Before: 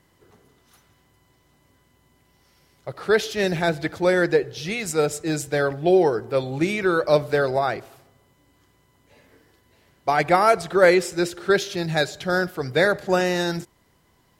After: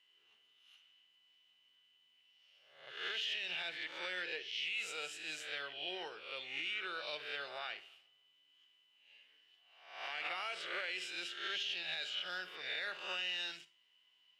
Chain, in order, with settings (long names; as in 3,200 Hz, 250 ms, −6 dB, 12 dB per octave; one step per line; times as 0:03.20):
peak hold with a rise ahead of every peak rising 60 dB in 0.67 s
resonant band-pass 2,900 Hz, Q 11
four-comb reverb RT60 0.31 s, DRR 14.5 dB
brickwall limiter −35.5 dBFS, peak gain reduction 10 dB
level +5.5 dB